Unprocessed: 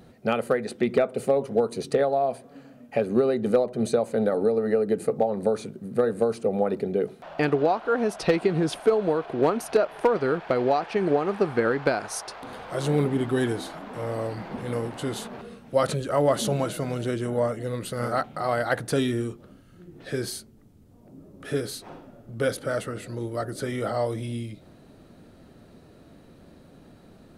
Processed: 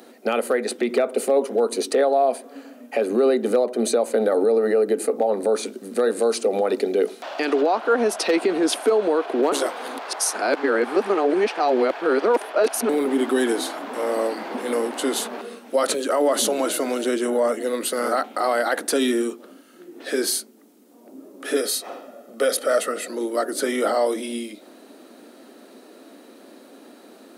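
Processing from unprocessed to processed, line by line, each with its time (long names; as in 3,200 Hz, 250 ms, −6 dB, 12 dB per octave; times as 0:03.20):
0:05.63–0:07.61: parametric band 5,100 Hz +7.5 dB 2.1 octaves
0:09.52–0:12.89: reverse
0:21.56–0:23.08: comb filter 1.6 ms, depth 51%
whole clip: high-shelf EQ 6,200 Hz +7 dB; brickwall limiter −18 dBFS; Butterworth high-pass 240 Hz 48 dB per octave; level +7.5 dB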